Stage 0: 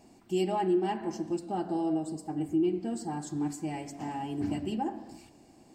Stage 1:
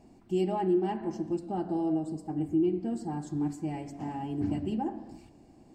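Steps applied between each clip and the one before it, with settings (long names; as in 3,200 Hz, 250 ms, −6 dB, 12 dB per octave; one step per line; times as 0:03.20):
spectral tilt −2 dB per octave
level −2.5 dB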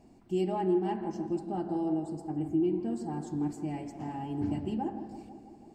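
tape delay 163 ms, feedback 80%, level −10.5 dB, low-pass 1,600 Hz
level −1.5 dB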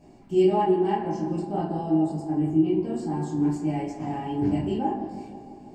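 convolution reverb RT60 0.30 s, pre-delay 6 ms, DRR −6 dB
level +1 dB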